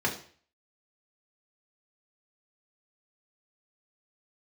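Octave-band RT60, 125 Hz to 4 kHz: 0.50 s, 0.45 s, 0.45 s, 0.45 s, 0.50 s, 0.45 s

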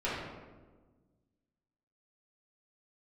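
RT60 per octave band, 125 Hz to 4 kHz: 2.0 s, 1.9 s, 1.5 s, 1.2 s, 0.95 s, 0.75 s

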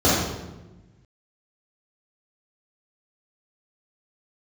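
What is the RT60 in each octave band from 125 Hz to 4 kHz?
1.8 s, 1.5 s, 1.2 s, 1.0 s, 0.90 s, 0.75 s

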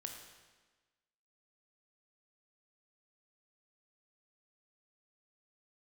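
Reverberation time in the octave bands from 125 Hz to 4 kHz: 1.3 s, 1.4 s, 1.3 s, 1.3 s, 1.3 s, 1.2 s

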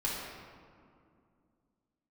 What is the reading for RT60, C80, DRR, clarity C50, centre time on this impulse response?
2.4 s, 1.5 dB, -6.5 dB, -1.0 dB, 106 ms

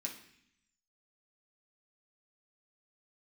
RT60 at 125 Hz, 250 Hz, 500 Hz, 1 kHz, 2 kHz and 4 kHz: 1.0 s, 1.0 s, 0.65 s, 0.65 s, 0.90 s, 0.85 s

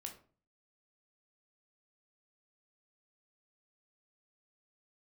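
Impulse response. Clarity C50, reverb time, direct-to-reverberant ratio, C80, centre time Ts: 10.5 dB, 0.40 s, 3.0 dB, 15.0 dB, 16 ms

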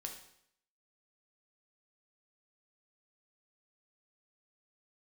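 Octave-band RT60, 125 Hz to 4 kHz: 0.70 s, 0.70 s, 0.70 s, 0.70 s, 0.70 s, 0.65 s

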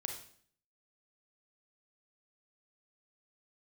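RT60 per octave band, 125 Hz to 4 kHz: 0.65 s, 0.65 s, 0.60 s, 0.55 s, 0.55 s, 0.55 s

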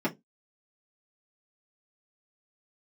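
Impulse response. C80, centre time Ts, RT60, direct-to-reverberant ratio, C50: 29.0 dB, 13 ms, 0.15 s, -7.0 dB, 20.0 dB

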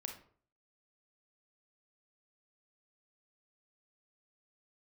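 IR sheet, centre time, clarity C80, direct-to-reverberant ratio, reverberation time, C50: 20 ms, 13.0 dB, 3.0 dB, 0.50 s, 7.0 dB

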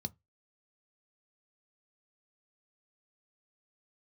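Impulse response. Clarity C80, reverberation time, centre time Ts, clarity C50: 38.5 dB, 0.20 s, 3 ms, 30.5 dB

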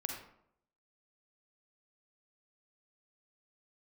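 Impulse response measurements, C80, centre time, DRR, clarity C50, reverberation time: 6.0 dB, 36 ms, 1.5 dB, 3.0 dB, 0.70 s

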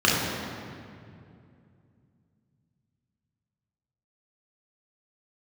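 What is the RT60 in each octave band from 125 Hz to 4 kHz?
3.9 s, 3.4 s, 2.7 s, 2.2 s, 2.0 s, 1.6 s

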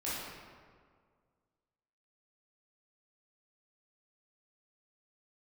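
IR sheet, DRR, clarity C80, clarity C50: -10.0 dB, 0.0 dB, -3.0 dB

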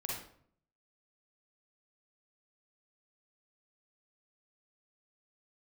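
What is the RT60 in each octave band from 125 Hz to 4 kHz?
0.80 s, 0.75 s, 0.65 s, 0.55 s, 0.50 s, 0.40 s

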